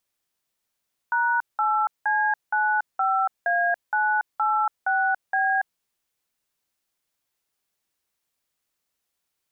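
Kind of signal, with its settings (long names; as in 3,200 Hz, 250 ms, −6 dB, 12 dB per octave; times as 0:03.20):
touch tones "#8C95A986B", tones 283 ms, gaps 185 ms, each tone −22 dBFS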